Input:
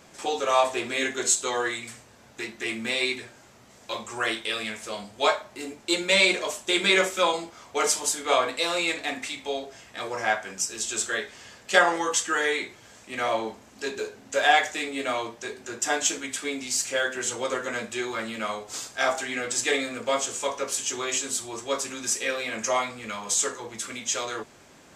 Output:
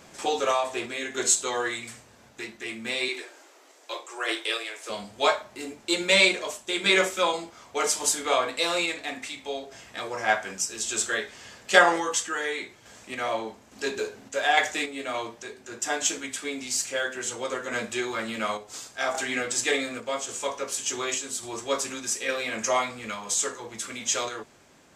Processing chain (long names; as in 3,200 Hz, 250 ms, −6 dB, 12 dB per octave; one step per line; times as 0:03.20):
0:00.51–0:01.14: downward compressor 2 to 1, threshold −27 dBFS, peak gain reduction 7 dB
0:03.08–0:04.90: Butterworth high-pass 280 Hz 96 dB per octave
sample-and-hold tremolo
level +2 dB